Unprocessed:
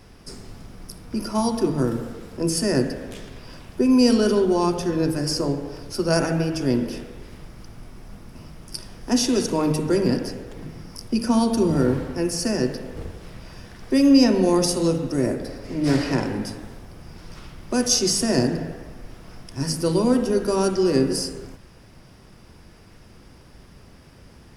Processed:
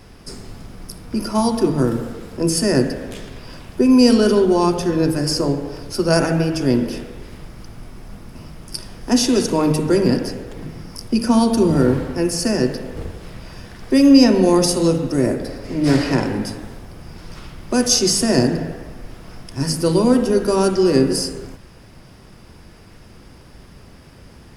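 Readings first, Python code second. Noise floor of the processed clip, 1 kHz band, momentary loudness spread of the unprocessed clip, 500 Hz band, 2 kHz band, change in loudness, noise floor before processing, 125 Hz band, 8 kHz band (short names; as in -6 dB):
-44 dBFS, +4.5 dB, 20 LU, +4.5 dB, +4.5 dB, +4.5 dB, -48 dBFS, +4.5 dB, +4.0 dB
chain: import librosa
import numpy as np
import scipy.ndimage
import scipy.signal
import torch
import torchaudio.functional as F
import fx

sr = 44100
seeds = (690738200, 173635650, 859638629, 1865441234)

y = fx.notch(x, sr, hz=5700.0, q=30.0)
y = y * 10.0 ** (4.5 / 20.0)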